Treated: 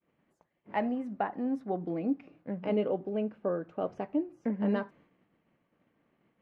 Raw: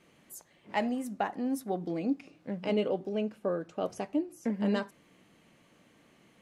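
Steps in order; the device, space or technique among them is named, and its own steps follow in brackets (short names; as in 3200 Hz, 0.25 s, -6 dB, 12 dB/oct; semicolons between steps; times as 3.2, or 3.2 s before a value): hearing-loss simulation (LPF 1900 Hz 12 dB/oct; expander -55 dBFS)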